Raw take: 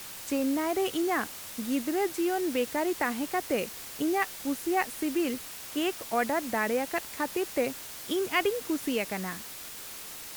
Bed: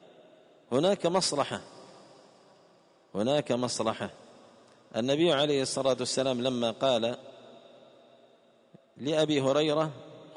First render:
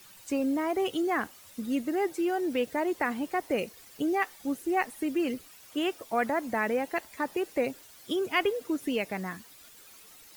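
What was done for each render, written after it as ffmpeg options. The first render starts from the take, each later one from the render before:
-af "afftdn=nr=13:nf=-42"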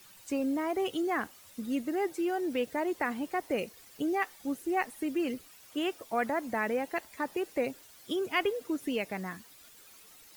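-af "volume=-2.5dB"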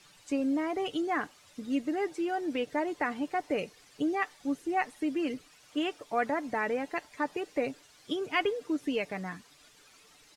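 -af "lowpass=7k,aecho=1:1:6.8:0.37"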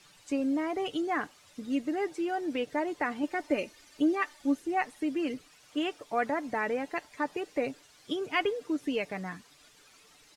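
-filter_complex "[0:a]asettb=1/sr,asplit=3[a][b][c];[a]atrim=end=3.234[d];[b]atrim=start=3.23:end=4.6,asetpts=PTS-STARTPTS,afade=t=in:d=0.004:c=qsin,afade=t=out:st=1.366:d=0.004:c=qsin,aecho=1:1:3.3:0.65,atrim=end_sample=60417[e];[c]atrim=start=4.596[f];[d][e]acrossfade=d=0.004:c1=hsin:c2=qsin[g];[g][f]acrossfade=d=0.004:c1=qsin:c2=hsin"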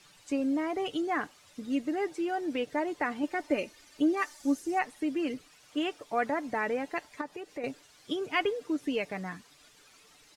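-filter_complex "[0:a]asettb=1/sr,asplit=3[a][b][c];[a]atrim=end=4.174[d];[b]atrim=start=4.17:end=4.79,asetpts=PTS-STARTPTS,afade=t=in:d=0.004:c=qsin,afade=t=out:st=0.616:d=0.004:c=qsin,highshelf=f=4.4k:t=q:w=1.5:g=6.5[e];[c]atrim=start=4.786[f];[d][e]acrossfade=d=0.004:c1=hsin:c2=qsin[g];[g][f]acrossfade=d=0.004:c1=qsin:c2=hsin,asettb=1/sr,asplit=3[h][i][j];[h]atrim=end=7.214[k];[i]atrim=start=7.21:end=7.64,asetpts=PTS-STARTPTS,afade=t=in:d=0.004:c=qsin,afade=t=out:st=0.426:d=0.004:c=qsin,acompressor=threshold=-48dB:ratio=1.5:attack=3.2:release=140:knee=1:detection=peak[l];[j]atrim=start=7.636[m];[k][l]acrossfade=d=0.004:c1=hsin:c2=qsin[n];[n][m]acrossfade=d=0.004:c1=qsin:c2=hsin"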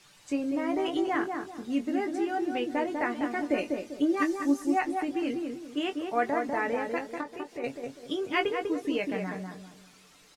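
-filter_complex "[0:a]asplit=2[a][b];[b]adelay=21,volume=-7.5dB[c];[a][c]amix=inputs=2:normalize=0,asplit=2[d][e];[e]adelay=197,lowpass=f=1.1k:p=1,volume=-3dB,asplit=2[f][g];[g]adelay=197,lowpass=f=1.1k:p=1,volume=0.36,asplit=2[h][i];[i]adelay=197,lowpass=f=1.1k:p=1,volume=0.36,asplit=2[j][k];[k]adelay=197,lowpass=f=1.1k:p=1,volume=0.36,asplit=2[l][m];[m]adelay=197,lowpass=f=1.1k:p=1,volume=0.36[n];[f][h][j][l][n]amix=inputs=5:normalize=0[o];[d][o]amix=inputs=2:normalize=0"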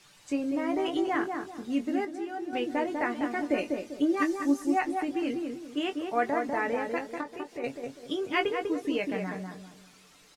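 -filter_complex "[0:a]asplit=3[a][b][c];[a]atrim=end=2.052[d];[b]atrim=start=2.048:end=2.532,asetpts=PTS-STARTPTS,volume=-6dB[e];[c]atrim=start=2.528[f];[d][e]acrossfade=d=0.004:c1=hsin:c2=hsin[g];[g][f]acrossfade=d=0.004:c1=hsin:c2=hsin"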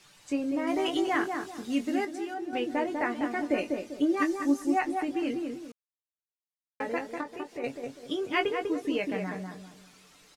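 -filter_complex "[0:a]asettb=1/sr,asplit=3[a][b][c];[a]atrim=end=0.674[d];[b]atrim=start=0.67:end=2.34,asetpts=PTS-STARTPTS,afade=t=in:d=0.004:c=qsin,afade=t=out:st=1.666:d=0.004:c=qsin,highshelf=f=2.2k:g=7.5[e];[c]atrim=start=2.336[f];[d][e]acrossfade=d=0.004:c1=hsin:c2=qsin[g];[g][f]acrossfade=d=0.004:c1=qsin:c2=hsin,asplit=3[h][i][j];[h]atrim=end=5.72,asetpts=PTS-STARTPTS,afade=t=out:st=5.716:d=0.004:c=hsin[k];[i]atrim=start=5.72:end=6.8,asetpts=PTS-STARTPTS,volume=0[l];[j]atrim=start=6.8,asetpts=PTS-STARTPTS,afade=t=in:d=0.004:c=hsin[m];[k][l][m]concat=n=3:v=0:a=1"

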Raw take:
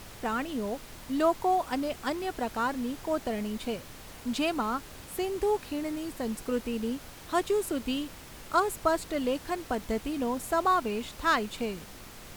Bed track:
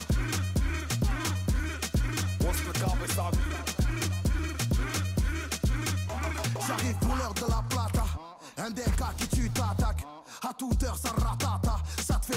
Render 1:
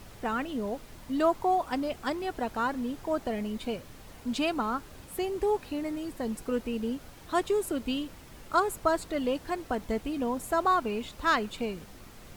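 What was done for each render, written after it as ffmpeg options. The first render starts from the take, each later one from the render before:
-af "afftdn=nr=6:nf=-47"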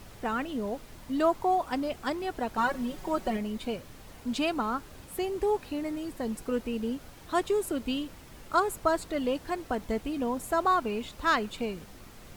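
-filter_complex "[0:a]asettb=1/sr,asplit=3[a][b][c];[a]atrim=end=2.574[d];[b]atrim=start=2.57:end=3.37,asetpts=PTS-STARTPTS,afade=t=in:d=0.004:c=qsin,afade=t=out:st=0.796:d=0.004:c=qsin,aecho=1:1:5.4:0.96,atrim=end_sample=35280[e];[c]atrim=start=3.366[f];[d][e]acrossfade=d=0.004:c1=hsin:c2=qsin[g];[g][f]acrossfade=d=0.004:c1=qsin:c2=hsin"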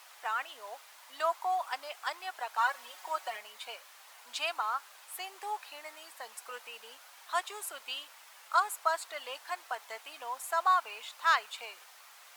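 -af "highpass=f=810:w=0.5412,highpass=f=810:w=1.3066"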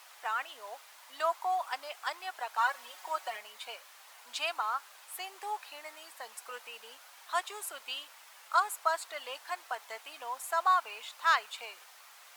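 -af anull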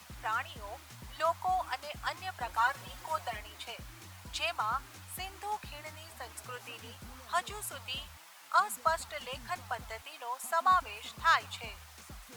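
-filter_complex "[1:a]volume=-22.5dB[a];[0:a][a]amix=inputs=2:normalize=0"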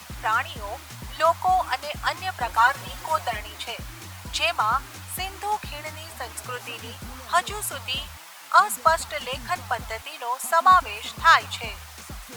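-af "volume=10.5dB"

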